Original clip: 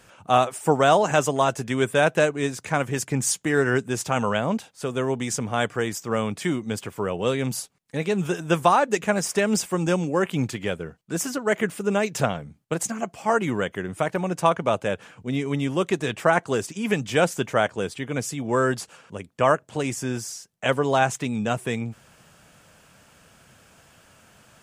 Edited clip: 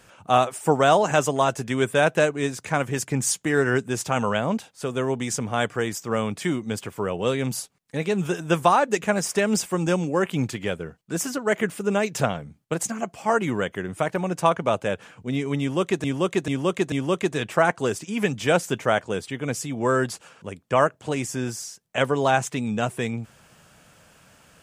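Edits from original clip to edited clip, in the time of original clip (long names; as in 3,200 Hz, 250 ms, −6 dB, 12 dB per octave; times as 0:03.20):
0:15.60–0:16.04: repeat, 4 plays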